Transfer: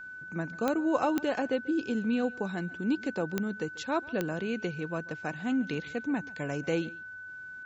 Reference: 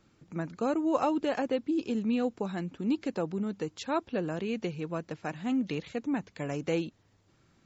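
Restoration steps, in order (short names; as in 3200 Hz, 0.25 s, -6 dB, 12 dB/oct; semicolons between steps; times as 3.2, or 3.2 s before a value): de-click; notch 1500 Hz, Q 30; inverse comb 0.139 s -21.5 dB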